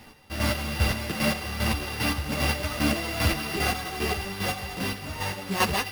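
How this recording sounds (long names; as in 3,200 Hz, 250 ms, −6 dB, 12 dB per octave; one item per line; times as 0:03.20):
a buzz of ramps at a fixed pitch in blocks of 16 samples
chopped level 2.5 Hz, depth 60%, duty 30%
aliases and images of a low sample rate 7,500 Hz, jitter 0%
a shimmering, thickened sound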